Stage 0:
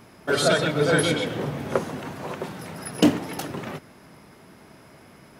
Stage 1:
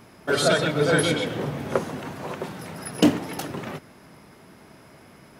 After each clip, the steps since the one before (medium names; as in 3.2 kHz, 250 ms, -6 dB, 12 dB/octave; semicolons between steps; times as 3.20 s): no audible change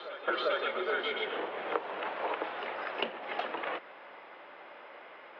compression 5:1, threshold -30 dBFS, peak gain reduction 16 dB; reverse echo 397 ms -12.5 dB; mistuned SSB -68 Hz 540–3400 Hz; trim +4 dB